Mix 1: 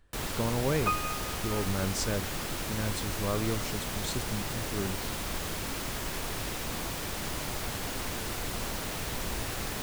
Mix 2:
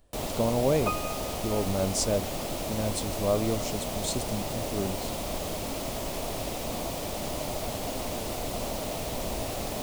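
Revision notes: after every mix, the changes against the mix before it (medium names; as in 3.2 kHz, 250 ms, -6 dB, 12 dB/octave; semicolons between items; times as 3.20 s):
speech: add treble shelf 6.4 kHz +11 dB; master: add fifteen-band graphic EQ 250 Hz +4 dB, 630 Hz +11 dB, 1.6 kHz -9 dB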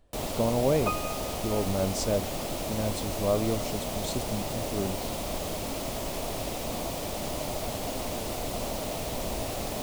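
speech: add treble shelf 6.4 kHz -11 dB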